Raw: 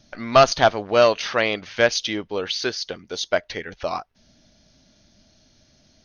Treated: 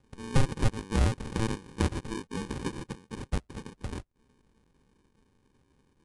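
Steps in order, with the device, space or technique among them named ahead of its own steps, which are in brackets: crushed at another speed (playback speed 2×; sample-and-hold 33×; playback speed 0.5×); trim -9 dB

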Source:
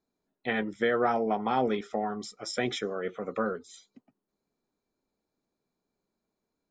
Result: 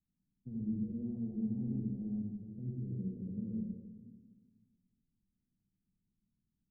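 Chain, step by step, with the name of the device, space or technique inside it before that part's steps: club heard from the street (peak limiter -21.5 dBFS, peak gain reduction 6 dB; low-pass 180 Hz 24 dB/octave; reverberation RT60 1.4 s, pre-delay 61 ms, DRR -3 dB); trim +3 dB

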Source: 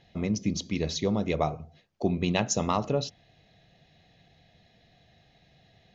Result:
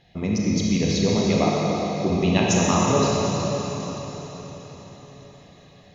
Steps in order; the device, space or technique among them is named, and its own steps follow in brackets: cathedral (reverberation RT60 4.8 s, pre-delay 31 ms, DRR -4.5 dB); 1.44–2.10 s: high-pass 140 Hz; trim +2 dB

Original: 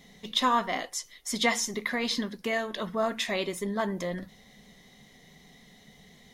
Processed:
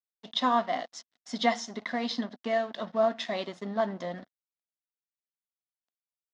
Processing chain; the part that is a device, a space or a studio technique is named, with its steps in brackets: blown loudspeaker (crossover distortion -43 dBFS; cabinet simulation 150–5400 Hz, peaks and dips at 240 Hz +5 dB, 390 Hz -4 dB, 690 Hz +9 dB, 2.4 kHz -7 dB); trim -2 dB

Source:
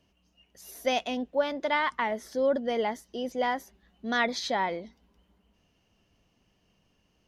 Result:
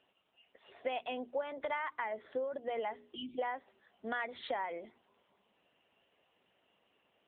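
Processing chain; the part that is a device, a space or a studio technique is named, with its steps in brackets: 2.77–3.58 s: gate with hold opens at -54 dBFS; hum notches 60/120/180/240/300/360/420 Hz; 3.14–3.39 s: spectral selection erased 370–2300 Hz; voicemail (band-pass 420–3200 Hz; compression 8:1, threshold -36 dBFS, peak gain reduction 14.5 dB; trim +3 dB; AMR-NB 7.95 kbps 8 kHz)

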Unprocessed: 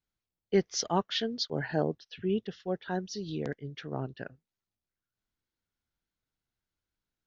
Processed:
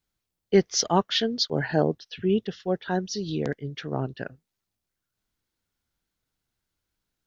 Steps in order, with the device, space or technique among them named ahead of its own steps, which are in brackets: exciter from parts (in parallel at -12 dB: high-pass 3 kHz + saturation -24 dBFS, distortion -18 dB); on the sum: trim +6.5 dB

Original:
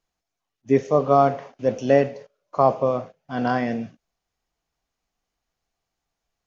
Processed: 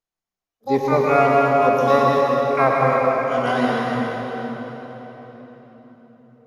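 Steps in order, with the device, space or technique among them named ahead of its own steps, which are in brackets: spectral noise reduction 9 dB; bass shelf 84 Hz -5.5 dB; de-hum 142.2 Hz, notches 22; shimmer-style reverb (harmony voices +12 st -5 dB; reverberation RT60 4.3 s, pre-delay 96 ms, DRR -3 dB); trim -2 dB

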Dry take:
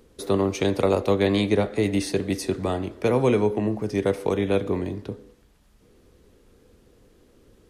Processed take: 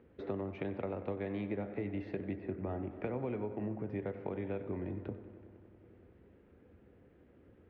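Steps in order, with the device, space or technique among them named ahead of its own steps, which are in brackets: 2.35–2.91 s: distance through air 400 m; bass amplifier (compression 5:1, threshold -30 dBFS, peak gain reduction 13.5 dB; cabinet simulation 78–2300 Hz, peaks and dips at 83 Hz +6 dB, 450 Hz -3 dB, 1.1 kHz -6 dB); filtered feedback delay 94 ms, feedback 84%, low-pass 3.4 kHz, level -14.5 dB; trim -4.5 dB

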